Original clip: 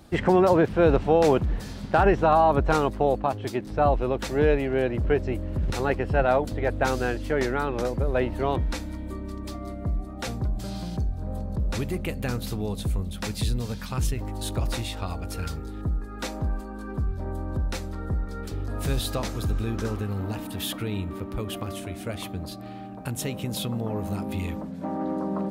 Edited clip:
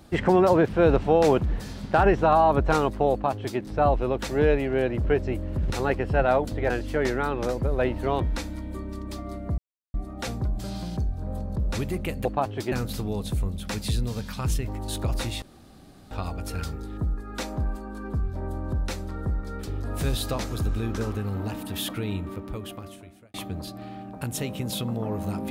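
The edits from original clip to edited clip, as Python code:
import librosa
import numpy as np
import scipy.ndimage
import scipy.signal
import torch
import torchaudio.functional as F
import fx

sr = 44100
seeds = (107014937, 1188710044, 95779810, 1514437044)

y = fx.edit(x, sr, fx.duplicate(start_s=3.12, length_s=0.47, to_s=12.25),
    fx.cut(start_s=6.7, length_s=0.36),
    fx.insert_silence(at_s=9.94, length_s=0.36),
    fx.insert_room_tone(at_s=14.95, length_s=0.69),
    fx.fade_out_span(start_s=21.01, length_s=1.17), tone=tone)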